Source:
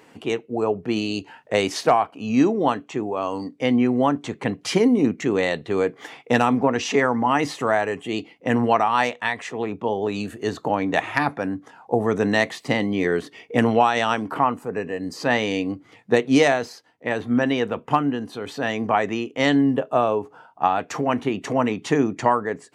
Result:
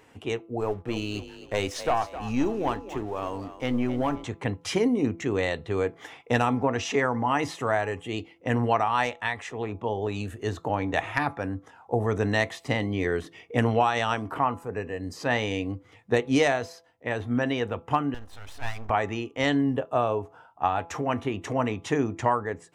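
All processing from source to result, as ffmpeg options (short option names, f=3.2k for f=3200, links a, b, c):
-filter_complex "[0:a]asettb=1/sr,asplit=3[a][b][c];[a]atrim=end=0.604[d];[b]atrim=start=0.6:end=4.24,asetpts=PTS-STARTPTS,afade=t=in:d=0.004:c=qsin,afade=t=out:st=3.636:d=0.004:c=qsin,aeval=exprs='(tanh(3.55*val(0)+0.2)-tanh(0.2))/3.55':c=same,aeval=exprs='sgn(val(0))*max(abs(val(0))-0.00473,0)':c=same,asplit=5[e][f][g][h][i];[f]adelay=261,afreqshift=35,volume=-13dB[j];[g]adelay=522,afreqshift=70,volume=-21.9dB[k];[h]adelay=783,afreqshift=105,volume=-30.7dB[l];[i]adelay=1044,afreqshift=140,volume=-39.6dB[m];[e][j][k][l][m]amix=inputs=5:normalize=0,atrim=end_sample=160524[n];[c]atrim=start=4.236[o];[d][n]acrossfade=d=0.004:c1=hsin:c2=qsin[p];[p][o]acrossfade=d=0.004:c1=qsin:c2=hsin,asettb=1/sr,asplit=3[q][r][s];[q]atrim=end=18.144[t];[r]atrim=start=18.14:end=18.9,asetpts=PTS-STARTPTS,afade=t=in:d=0.004:c=qsin,afade=t=out:st=0.756:d=0.004:c=qsin,lowshelf=f=630:t=q:w=3:g=-7,aeval=exprs='max(val(0),0)':c=same[u];[s]atrim=start=18.896[v];[t][u]acrossfade=d=0.004:c1=hsin:c2=qsin[w];[w][v]acrossfade=d=0.004:c1=qsin:c2=hsin,lowshelf=f=120:t=q:w=1.5:g=10.5,bandreject=f=4.5k:w=11,bandreject=f=167.5:t=h:w=4,bandreject=f=335:t=h:w=4,bandreject=f=502.5:t=h:w=4,bandreject=f=670:t=h:w=4,bandreject=f=837.5:t=h:w=4,bandreject=f=1.005k:t=h:w=4,bandreject=f=1.1725k:t=h:w=4,bandreject=f=1.34k:t=h:w=4,volume=-4.5dB"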